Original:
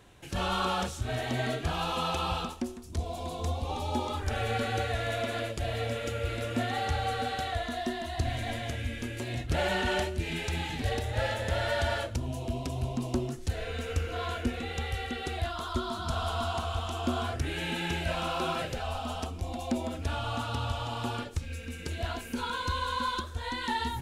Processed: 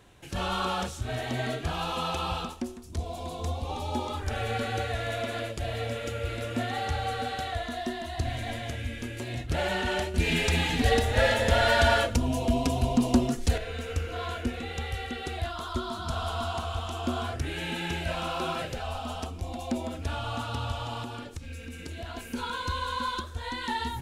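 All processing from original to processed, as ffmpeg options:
-filter_complex "[0:a]asettb=1/sr,asplit=3[a][b][c];[a]atrim=end=10.144[d];[b]atrim=start=10.14:end=13.58,asetpts=PTS-STARTPTS,afade=t=in:d=0.004:c=qsin,afade=t=out:st=3.436:d=0.004:c=qsin,aecho=1:1:4.2:0.51,atrim=end_sample=151704,acontrast=89[e];[c]atrim=start=13.576[f];[d][e]acrossfade=d=0.004:c1=hsin:c2=qsin[g];[g][f]acrossfade=d=0.004:c1=qsin:c2=hsin,asettb=1/sr,asplit=3[h][i][j];[h]atrim=end=21.034[k];[i]atrim=start=21.03:end=22.17,asetpts=PTS-STARTPTS,afade=t=in:d=0.004:c=qsin,afade=t=out:st=1.136:d=0.004:c=qsin,equalizer=f=280:t=o:w=0.34:g=5,acompressor=threshold=-36dB:ratio=2.5:attack=3.2:release=140:knee=1:detection=peak[l];[j]atrim=start=22.166[m];[k][l]acrossfade=d=0.004:c1=hsin:c2=qsin[n];[n][m]acrossfade=d=0.004:c1=qsin:c2=hsin"

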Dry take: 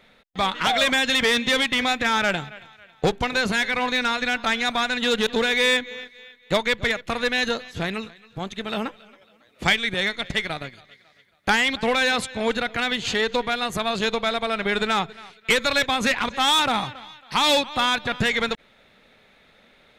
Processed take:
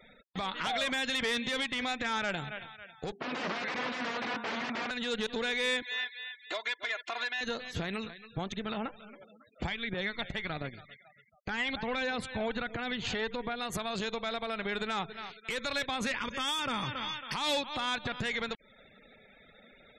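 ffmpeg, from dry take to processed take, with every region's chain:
-filter_complex "[0:a]asettb=1/sr,asplit=3[a][b][c];[a]atrim=end=3.124[d];[b]atrim=start=3.12:end=4.91,asetpts=PTS-STARTPTS,afade=t=in:d=0.004:c=qsin,afade=t=out:st=1.786:d=0.004:c=qsin,aeval=exprs='(mod(15.8*val(0)+1,2)-1)/15.8':c=same,highpass=190,lowpass=2.2k[e];[c]atrim=start=4.906[f];[d][e]acrossfade=d=0.004:c1=hsin:c2=qsin[g];[g][f]acrossfade=d=0.004:c1=qsin:c2=hsin,asettb=1/sr,asplit=3[h][i][j];[h]atrim=end=5.824[k];[i]atrim=start=5.82:end=7.41,asetpts=PTS-STARTPTS,afade=t=in:d=0.004:c=qsin,afade=t=out:st=1.586:d=0.004:c=qsin,highpass=660,lowpass=6.8k,aecho=1:1:2.9:1,atrim=end_sample=70119[l];[j]atrim=start=7.406[m];[k][l]acrossfade=d=0.004:c1=hsin:c2=qsin[n];[n][m]acrossfade=d=0.004:c1=qsin:c2=hsin,asettb=1/sr,asplit=3[o][p][q];[o]atrim=end=8.524[r];[p]atrim=start=8.52:end=13.6,asetpts=PTS-STARTPTS,afade=t=in:d=0.004:c=qsin,afade=t=out:st=5.076:d=0.004:c=qsin,highshelf=f=4.3k:g=-11.5,aphaser=in_gain=1:out_gain=1:delay=1.5:decay=0.33:speed=1.4:type=triangular[s];[q]atrim=start=13.596[t];[r][s]acrossfade=d=0.004:c1=hsin:c2=qsin[u];[u][t]acrossfade=d=0.004:c1=qsin:c2=hsin,asettb=1/sr,asplit=3[v][w][x];[v]atrim=end=16.144[y];[w]atrim=start=16.14:end=17.34,asetpts=PTS-STARTPTS,afade=t=in:d=0.004:c=qsin,afade=t=out:st=1.196:d=0.004:c=qsin,equalizer=f=750:t=o:w=0.27:g=-14.5,acontrast=84,asuperstop=centerf=4000:order=20:qfactor=6.5[z];[x]atrim=start=17.336[aa];[y][z]acrossfade=d=0.004:c1=hsin:c2=qsin[ab];[ab][aa]acrossfade=d=0.004:c1=qsin:c2=hsin,acompressor=threshold=-27dB:ratio=16,afftfilt=real='re*gte(hypot(re,im),0.00282)':imag='im*gte(hypot(re,im),0.00282)':win_size=1024:overlap=0.75,alimiter=limit=-23.5dB:level=0:latency=1:release=127"

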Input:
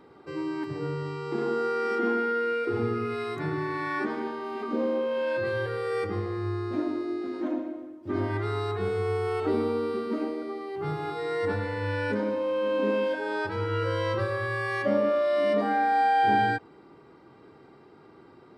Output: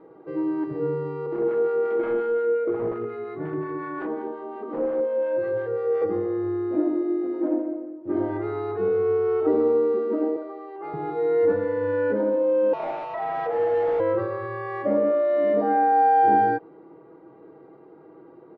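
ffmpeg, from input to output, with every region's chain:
-filter_complex "[0:a]asettb=1/sr,asplit=3[a][b][c];[a]atrim=end=1.264[d];[b]atrim=start=1.26:end=6.02,asetpts=PTS-STARTPTS,afade=t=in:d=0.004:c=qsin,afade=t=out:st=4.756:d=0.004:c=qsin,aeval=exprs='0.0708*(abs(mod(val(0)/0.0708+3,4)-2)-1)':c=same,lowpass=f=3.8k:p=1,acrossover=split=790[e][f];[e]aeval=exprs='val(0)*(1-0.5/2+0.5/2*cos(2*PI*5.6*n/s))':c=same[g];[f]aeval=exprs='val(0)*(1-0.5/2-0.5/2*cos(2*PI*5.6*n/s))':c=same[h];[g][h]amix=inputs=2:normalize=0[i];[c]atrim=start=6.016[j];[d][i]acrossfade=d=0.004:c1=hsin:c2=qsin[k];[k][j]acrossfade=d=0.004:c1=qsin:c2=hsin,asettb=1/sr,asplit=3[l][m][n];[l]atrim=end=10.364[o];[m]atrim=start=10.36:end=10.94,asetpts=PTS-STARTPTS,afade=t=in:d=0.004:c=qsin,afade=t=out:st=0.576:d=0.004:c=qsin,highpass=520,aecho=1:1:3.3:0.34,atrim=end_sample=25578[p];[n]atrim=start=10.936[q];[o][p]acrossfade=d=0.004:c1=hsin:c2=qsin[r];[r][q]acrossfade=d=0.004:c1=qsin:c2=hsin,asettb=1/sr,asplit=3[s][t][u];[s]atrim=end=12.734[v];[t]atrim=start=12.73:end=14,asetpts=PTS-STARTPTS,afade=t=in:d=0.004:c=qsin,afade=t=out:st=1.266:d=0.004:c=qsin,lowshelf=f=440:g=8.5,afreqshift=370,asoftclip=type=hard:threshold=-28.5dB[w];[u]atrim=start=13.996[x];[v][w]acrossfade=d=0.004:c1=hsin:c2=qsin[y];[y][x]acrossfade=d=0.004:c1=qsin:c2=hsin,lowpass=2.1k,equalizer=f=460:w=0.62:g=13.5,aecho=1:1:6.2:0.5,volume=-7dB"

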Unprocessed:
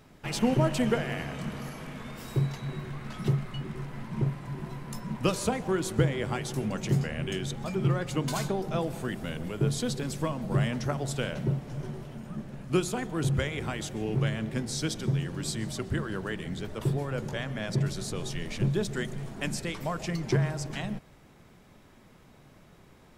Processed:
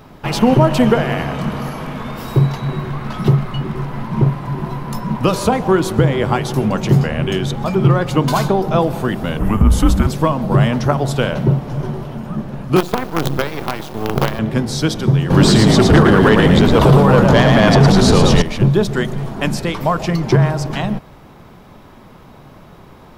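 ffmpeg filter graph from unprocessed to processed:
-filter_complex "[0:a]asettb=1/sr,asplit=3[a][b][c];[a]atrim=end=9.394[d];[b]atrim=start=9.39:end=10.07,asetpts=PTS-STARTPTS,afade=t=in:d=0.004:c=qsin,afade=t=out:st=0.676:d=0.004:c=qsin,equalizer=f=4.4k:t=o:w=1.1:g=-13,acontrast=61,afreqshift=-200[e];[c]atrim=start=10.066[f];[d][e]acrossfade=d=0.004:c1=hsin:c2=qsin[g];[g][f]acrossfade=d=0.004:c1=qsin:c2=hsin,asettb=1/sr,asplit=3[h][i][j];[h]atrim=end=12.764[k];[i]atrim=start=12.76:end=14.39,asetpts=PTS-STARTPTS,afade=t=in:d=0.004:c=qsin,afade=t=out:st=1.626:d=0.004:c=qsin,highpass=160,aemphasis=mode=reproduction:type=50kf,acrusher=bits=5:dc=4:mix=0:aa=0.000001[l];[j]atrim=start=14.386[m];[k][l]acrossfade=d=0.004:c1=hsin:c2=qsin[n];[n][m]acrossfade=d=0.004:c1=qsin:c2=hsin,asettb=1/sr,asplit=3[o][p][q];[o]atrim=end=15.304[r];[p]atrim=start=15.3:end=18.42,asetpts=PTS-STARTPTS,afade=t=in:d=0.004:c=qsin,afade=t=out:st=3.116:d=0.004:c=qsin,aeval=exprs='0.158*sin(PI/2*2.51*val(0)/0.158)':c=same,asplit=5[s][t][u][v][w];[t]adelay=111,afreqshift=56,volume=-4dB[x];[u]adelay=222,afreqshift=112,volume=-13.4dB[y];[v]adelay=333,afreqshift=168,volume=-22.7dB[z];[w]adelay=444,afreqshift=224,volume=-32.1dB[aa];[s][x][y][z][aa]amix=inputs=5:normalize=0,atrim=end_sample=137592,acrossover=split=8600[ab][ac];[ac]acompressor=threshold=-50dB:ratio=4:attack=1:release=60[ad];[ab][ad]amix=inputs=2:normalize=0[ae];[q]atrim=start=18.416[af];[r][ae]acrossfade=d=0.004:c1=hsin:c2=qsin[ag];[ag][af]acrossfade=d=0.004:c1=qsin:c2=hsin,equalizer=f=1k:t=o:w=1:g=5,equalizer=f=2k:t=o:w=1:g=-4,equalizer=f=8k:t=o:w=1:g=-9,alimiter=level_in=15dB:limit=-1dB:release=50:level=0:latency=1,volume=-1dB"

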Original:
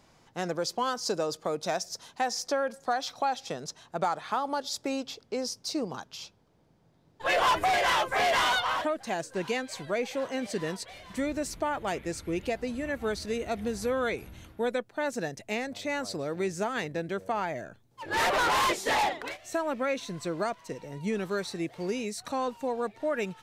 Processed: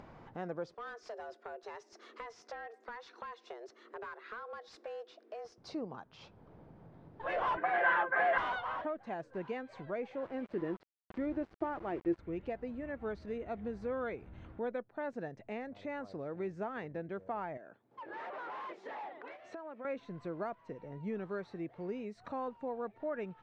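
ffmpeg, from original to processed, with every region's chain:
-filter_complex "[0:a]asettb=1/sr,asplit=3[a][b][c];[a]atrim=end=0.744[d];[b]atrim=start=0.74:end=5.58,asetpts=PTS-STARTPTS,afade=t=in:d=0.004:c=qsin,afade=t=out:st=4.836:d=0.004:c=qsin,equalizer=f=640:t=o:w=1.1:g=-14,afreqshift=230,asoftclip=type=hard:threshold=-32dB[e];[c]atrim=start=5.576[f];[d][e]acrossfade=d=0.004:c1=hsin:c2=qsin[g];[g][f]acrossfade=d=0.004:c1=qsin:c2=hsin,asettb=1/sr,asplit=3[h][i][j];[h]atrim=end=7.574[k];[i]atrim=start=7.57:end=8.38,asetpts=PTS-STARTPTS,afade=t=in:d=0.004:c=qsin,afade=t=out:st=0.806:d=0.004:c=qsin,highpass=240,lowpass=3k,equalizer=f=1.6k:w=3.9:g=12.5,aecho=1:1:5.8:0.85,atrim=end_sample=35721[l];[j]atrim=start=8.376[m];[k][l]acrossfade=d=0.004:c1=hsin:c2=qsin[n];[n][m]acrossfade=d=0.004:c1=qsin:c2=hsin,asettb=1/sr,asplit=3[o][p][q];[o]atrim=end=10.234[r];[p]atrim=start=10.23:end=12.19,asetpts=PTS-STARTPTS,afade=t=in:d=0.004:c=qsin,afade=t=out:st=1.956:d=0.004:c=qsin,lowpass=3.8k,equalizer=f=340:t=o:w=0.27:g=13,aeval=exprs='val(0)*gte(abs(val(0)),0.0119)':c=same[s];[q]atrim=start=12.186[t];[r][s]acrossfade=d=0.004:c1=hsin:c2=qsin[u];[u][t]acrossfade=d=0.004:c1=qsin:c2=hsin,asettb=1/sr,asplit=3[v][w][x];[v]atrim=end=17.574[y];[w]atrim=start=17.57:end=19.85,asetpts=PTS-STARTPTS,afade=t=in:d=0.004:c=qsin,afade=t=out:st=2.276:d=0.004:c=qsin,acompressor=threshold=-43dB:ratio=2:attack=3.2:release=140:knee=1:detection=peak,highpass=280,lowpass=7.5k[z];[x]atrim=start=19.846[aa];[y][z]acrossfade=d=0.004:c1=hsin:c2=qsin[ab];[ab][aa]acrossfade=d=0.004:c1=qsin:c2=hsin,lowpass=1.6k,acompressor=mode=upward:threshold=-32dB:ratio=2.5,volume=-8dB"

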